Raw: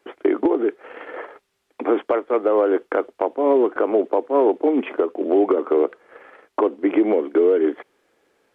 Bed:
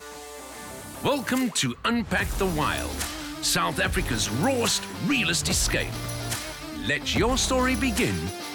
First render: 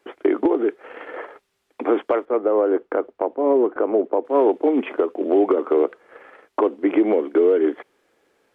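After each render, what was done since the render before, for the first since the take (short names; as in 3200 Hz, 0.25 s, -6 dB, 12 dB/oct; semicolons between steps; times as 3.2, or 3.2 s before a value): 2.25–4.25 LPF 1100 Hz 6 dB/oct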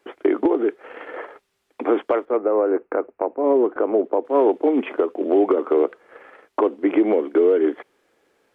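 2.37–3.44 elliptic low-pass 2600 Hz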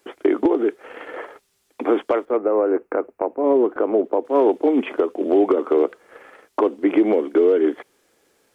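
tone controls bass +4 dB, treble +11 dB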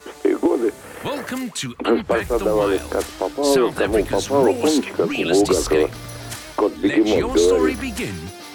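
add bed -2 dB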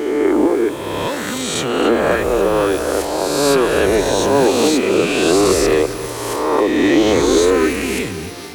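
spectral swells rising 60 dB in 1.75 s; lo-fi delay 0.27 s, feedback 55%, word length 6-bit, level -13.5 dB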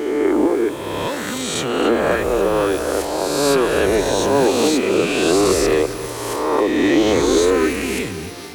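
gain -2 dB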